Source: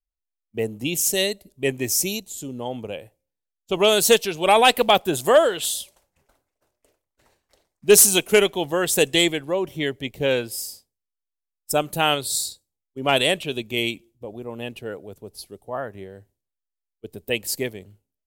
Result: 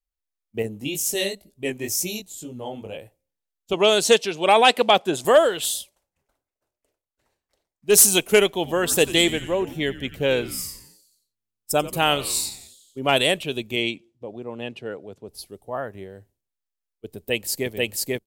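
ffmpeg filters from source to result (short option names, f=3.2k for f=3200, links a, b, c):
-filter_complex "[0:a]asettb=1/sr,asplit=3[a][b][c];[a]atrim=end=0.624[d];[b]atrim=start=0.62:end=2.97,asetpts=PTS-STARTPTS,afade=t=in:d=0.004:c=qsin,afade=t=out:st=2.346:d=0.004:c=qsin,flanger=delay=17:depth=4.1:speed=2.1[e];[c]atrim=start=2.966[f];[d][e]acrossfade=d=0.004:c1=hsin:c2=qsin[g];[g][f]acrossfade=d=0.004:c1=qsin:c2=hsin,asettb=1/sr,asplit=3[h][i][j];[h]atrim=end=3.734[k];[i]atrim=start=3.73:end=5.25,asetpts=PTS-STARTPTS,afade=t=in:d=0.004:c=qsin,afade=t=out:st=1.516:d=0.004:c=qsin,highpass=160,lowpass=7.7k[l];[j]atrim=start=5.246[m];[k][l]acrossfade=d=0.004:c1=hsin:c2=qsin[n];[n][m]acrossfade=d=0.004:c1=qsin:c2=hsin,asettb=1/sr,asplit=3[o][p][q];[o]atrim=end=8.544[r];[p]atrim=start=8.54:end=12.99,asetpts=PTS-STARTPTS,afade=t=in:d=0.004:c=qsin,afade=t=out:st=4.446:d=0.004:c=qsin,asplit=7[s][t][u][v][w][x][y];[t]adelay=89,afreqshift=-110,volume=-16dB[z];[u]adelay=178,afreqshift=-220,volume=-20.4dB[aa];[v]adelay=267,afreqshift=-330,volume=-24.9dB[ab];[w]adelay=356,afreqshift=-440,volume=-29.3dB[ac];[x]adelay=445,afreqshift=-550,volume=-33.7dB[ad];[y]adelay=534,afreqshift=-660,volume=-38.2dB[ae];[s][z][aa][ab][ac][ad][ae]amix=inputs=7:normalize=0,atrim=end_sample=196245[af];[q]atrim=start=12.986[ag];[r][af]acrossfade=d=0.004:c1=hsin:c2=qsin[ah];[ah][ag]acrossfade=d=0.004:c1=qsin:c2=hsin,asettb=1/sr,asplit=3[ai][aj][ak];[ai]atrim=end=13.764[al];[aj]atrim=start=13.76:end=15.29,asetpts=PTS-STARTPTS,afade=t=in:d=0.004:c=qsin,afade=t=out:st=1.526:d=0.004:c=qsin,highpass=110,lowpass=5.7k[am];[ak]atrim=start=15.286[an];[al][am]acrossfade=d=0.004:c1=hsin:c2=qsin[ao];[ao][an]acrossfade=d=0.004:c1=qsin:c2=hsin,asplit=2[ap][aq];[aq]afade=t=in:st=17.16:d=0.01,afade=t=out:st=17.69:d=0.01,aecho=0:1:490|980|1470|1960|2450|2940:1|0.45|0.2025|0.091125|0.0410062|0.0184528[ar];[ap][ar]amix=inputs=2:normalize=0,asplit=3[as][at][au];[as]atrim=end=5.9,asetpts=PTS-STARTPTS,afade=t=out:st=5.76:d=0.14:silence=0.316228[av];[at]atrim=start=5.9:end=7.86,asetpts=PTS-STARTPTS,volume=-10dB[aw];[au]atrim=start=7.86,asetpts=PTS-STARTPTS,afade=t=in:d=0.14:silence=0.316228[ax];[av][aw][ax]concat=n=3:v=0:a=1"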